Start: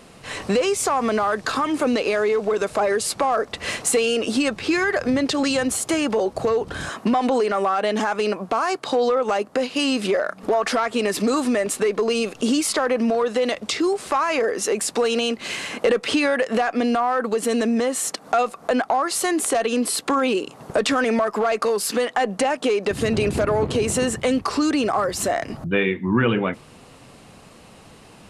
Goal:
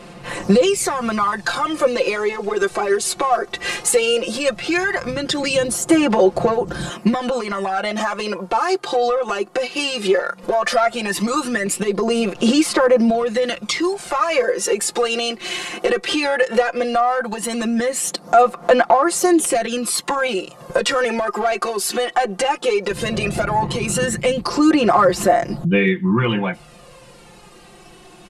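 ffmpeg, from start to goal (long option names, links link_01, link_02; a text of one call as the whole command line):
ffmpeg -i in.wav -af "aphaser=in_gain=1:out_gain=1:delay=2.7:decay=0.52:speed=0.16:type=sinusoidal,aecho=1:1:5.7:0.92,volume=-1dB" out.wav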